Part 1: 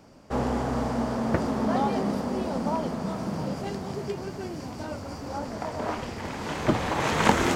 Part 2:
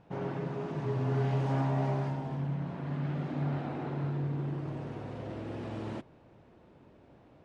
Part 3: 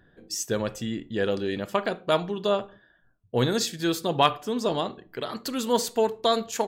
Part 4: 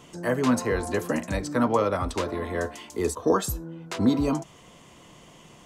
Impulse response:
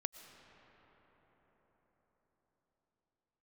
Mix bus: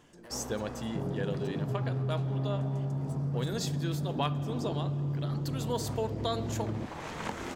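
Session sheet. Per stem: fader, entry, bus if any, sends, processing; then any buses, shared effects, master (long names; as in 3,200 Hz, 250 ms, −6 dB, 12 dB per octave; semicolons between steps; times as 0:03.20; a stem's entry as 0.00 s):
−14.5 dB, 0.00 s, bus A, no send, no processing
−1.0 dB, 0.85 s, bus A, no send, Bessel low-pass filter 920 Hz; spectral tilt −3.5 dB per octave
−9.5 dB, 0.00 s, bus A, send −7 dB, no processing
−9.0 dB, 0.00 s, no bus, send −10.5 dB, brickwall limiter −19.5 dBFS, peak gain reduction 10 dB; output level in coarse steps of 11 dB; soft clipping −35.5 dBFS, distortion −10 dB; automatic ducking −12 dB, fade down 0.55 s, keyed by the third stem
bus A: 0.0 dB, downward compressor, threshold −30 dBFS, peak gain reduction 11.5 dB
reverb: on, RT60 5.6 s, pre-delay 75 ms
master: no processing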